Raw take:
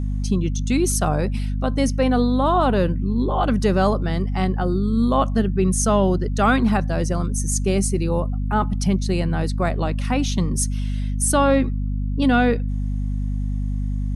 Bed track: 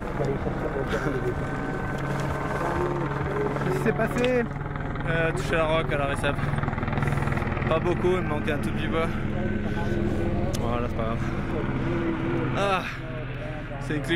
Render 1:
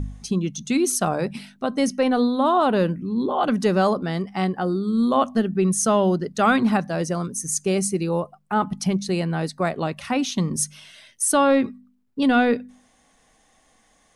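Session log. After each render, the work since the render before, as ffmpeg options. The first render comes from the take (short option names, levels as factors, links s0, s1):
-af "bandreject=f=50:t=h:w=4,bandreject=f=100:t=h:w=4,bandreject=f=150:t=h:w=4,bandreject=f=200:t=h:w=4,bandreject=f=250:t=h:w=4"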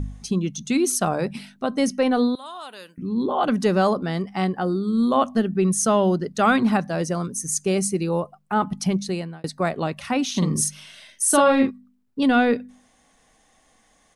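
-filter_complex "[0:a]asettb=1/sr,asplit=3[s0][s1][s2];[s0]atrim=end=2.354[s3];[s1]atrim=start=2.35:end=2.98,asetpts=PTS-STARTPTS,afade=t=in:d=0.004:c=qsin,afade=t=out:st=0.626:d=0.004:c=qsin,aderivative[s4];[s2]atrim=start=2.976[s5];[s3][s4]acrossfade=d=0.004:c1=hsin:c2=qsin[s6];[s6][s5]acrossfade=d=0.004:c1=qsin:c2=hsin,asplit=3[s7][s8][s9];[s7]afade=t=out:st=10.33:d=0.02[s10];[s8]asplit=2[s11][s12];[s12]adelay=45,volume=0.708[s13];[s11][s13]amix=inputs=2:normalize=0,afade=t=in:st=10.33:d=0.02,afade=t=out:st=11.69:d=0.02[s14];[s9]afade=t=in:st=11.69:d=0.02[s15];[s10][s14][s15]amix=inputs=3:normalize=0,asplit=2[s16][s17];[s16]atrim=end=9.44,asetpts=PTS-STARTPTS,afade=t=out:st=9.01:d=0.43[s18];[s17]atrim=start=9.44,asetpts=PTS-STARTPTS,afade=t=in:d=0.004:c=hsin[s19];[s18][s19]concat=n=2:v=0:a=1"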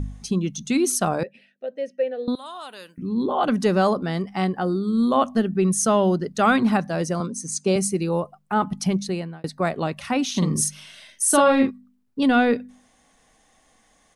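-filter_complex "[0:a]asettb=1/sr,asplit=3[s0][s1][s2];[s0]atrim=end=1.234[s3];[s1]atrim=start=1.23:end=2.28,asetpts=PTS-STARTPTS,afade=t=in:d=0.004:c=qsin,afade=t=out:st=1.046:d=0.004:c=qsin,asplit=3[s4][s5][s6];[s4]bandpass=f=530:t=q:w=8,volume=1[s7];[s5]bandpass=f=1840:t=q:w=8,volume=0.501[s8];[s6]bandpass=f=2480:t=q:w=8,volume=0.355[s9];[s7][s8][s9]amix=inputs=3:normalize=0[s10];[s2]atrim=start=2.276[s11];[s3][s10]acrossfade=d=0.004:c1=hsin:c2=qsin[s12];[s12][s11]acrossfade=d=0.004:c1=qsin:c2=hsin,asettb=1/sr,asplit=3[s13][s14][s15];[s13]atrim=end=7.204[s16];[s14]atrim=start=7.2:end=7.76,asetpts=PTS-STARTPTS,afade=t=in:d=0.004:c=qsin,afade=t=out:st=0.556:d=0.004:c=qsin,highpass=150,equalizer=f=230:t=q:w=4:g=8,equalizer=f=530:t=q:w=4:g=5,equalizer=f=980:t=q:w=4:g=5,equalizer=f=1800:t=q:w=4:g=-6,equalizer=f=4200:t=q:w=4:g=5,equalizer=f=6800:t=q:w=4:g=-4,lowpass=f=8500:w=0.5412,lowpass=f=8500:w=1.3066[s17];[s15]atrim=start=7.756[s18];[s16][s17]acrossfade=d=0.004:c1=hsin:c2=qsin[s19];[s19][s18]acrossfade=d=0.004:c1=qsin:c2=hsin,asettb=1/sr,asplit=3[s20][s21][s22];[s20]atrim=end=9.074[s23];[s21]atrim=start=9.07:end=9.63,asetpts=PTS-STARTPTS,afade=t=in:d=0.004:c=qsin,afade=t=out:st=0.556:d=0.004:c=qsin,equalizer=f=7400:t=o:w=1.5:g=-5.5[s24];[s22]atrim=start=9.626[s25];[s23][s24]acrossfade=d=0.004:c1=hsin:c2=qsin[s26];[s26][s25]acrossfade=d=0.004:c1=qsin:c2=hsin"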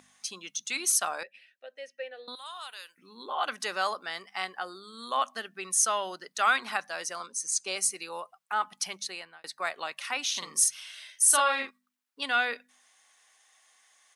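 -af "highpass=1300"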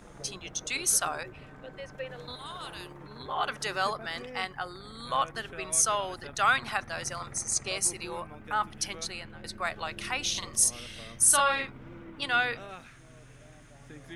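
-filter_complex "[1:a]volume=0.1[s0];[0:a][s0]amix=inputs=2:normalize=0"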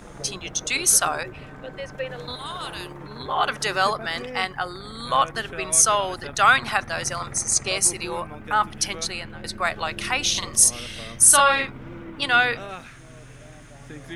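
-af "volume=2.51,alimiter=limit=0.794:level=0:latency=1"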